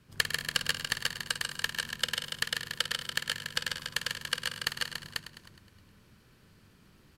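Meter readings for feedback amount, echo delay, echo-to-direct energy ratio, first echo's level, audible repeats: repeats not evenly spaced, 50 ms, 1.0 dB, −10.5 dB, 16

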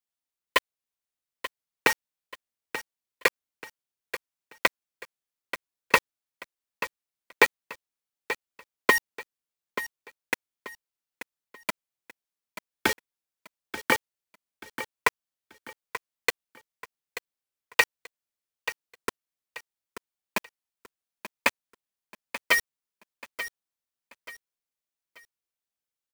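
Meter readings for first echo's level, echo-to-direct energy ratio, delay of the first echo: −12.0 dB, −11.5 dB, 884 ms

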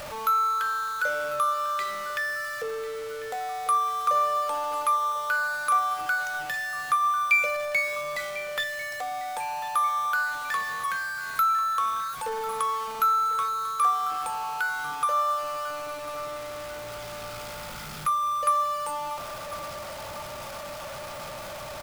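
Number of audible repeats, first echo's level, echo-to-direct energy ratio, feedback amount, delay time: 3, −16.0 dB, −15.0 dB, 47%, 1,046 ms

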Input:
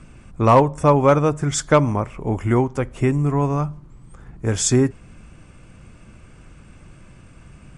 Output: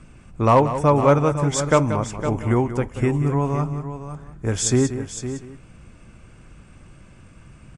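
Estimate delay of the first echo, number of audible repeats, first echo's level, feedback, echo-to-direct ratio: 183 ms, 3, −11.5 dB, repeats not evenly spaced, −8.0 dB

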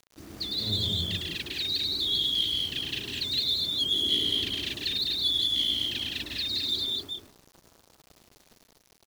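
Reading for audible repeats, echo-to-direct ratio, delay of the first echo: 6, 2.5 dB, 105 ms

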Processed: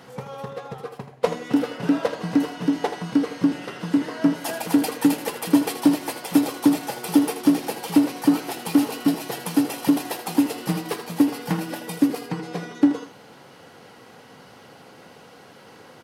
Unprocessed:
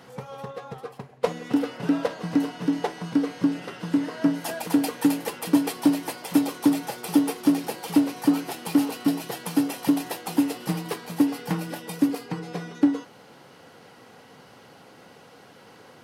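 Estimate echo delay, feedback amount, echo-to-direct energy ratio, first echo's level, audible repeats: 80 ms, repeats not evenly spaced, −10.5 dB, −10.5 dB, 1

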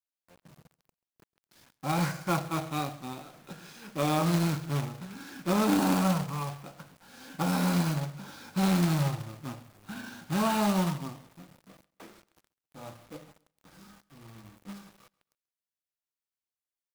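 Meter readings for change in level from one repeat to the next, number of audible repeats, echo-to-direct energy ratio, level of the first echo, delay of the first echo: −9.5 dB, 2, −23.0 dB, −23.5 dB, 135 ms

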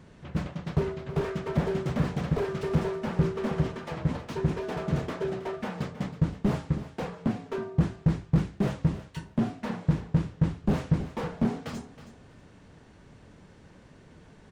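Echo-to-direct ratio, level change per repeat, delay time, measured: −13.5 dB, −14.5 dB, 320 ms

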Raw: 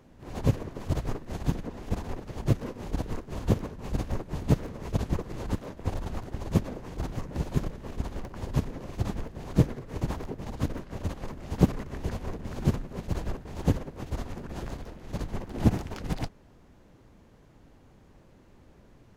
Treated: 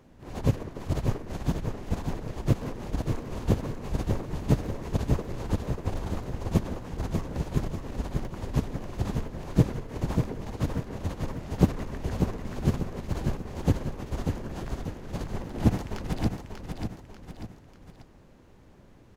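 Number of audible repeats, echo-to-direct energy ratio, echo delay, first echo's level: 3, −4.5 dB, 591 ms, −5.5 dB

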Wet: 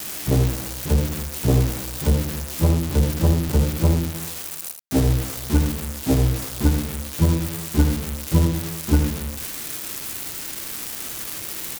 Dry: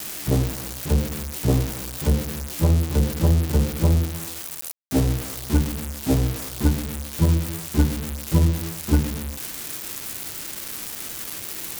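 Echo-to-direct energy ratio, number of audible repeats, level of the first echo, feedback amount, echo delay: −8.0 dB, 1, −8.0 dB, repeats not evenly spaced, 80 ms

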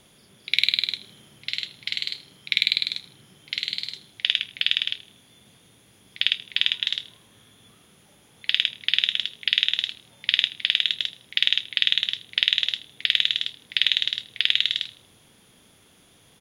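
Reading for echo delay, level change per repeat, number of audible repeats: 79 ms, −8.5 dB, 2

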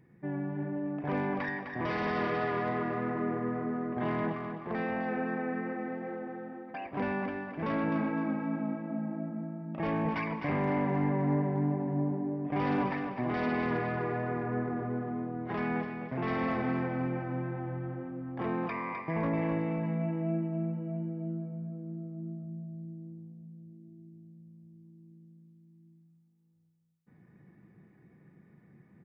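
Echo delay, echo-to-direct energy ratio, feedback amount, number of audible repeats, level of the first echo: 256 ms, −6.5 dB, 34%, 3, −7.0 dB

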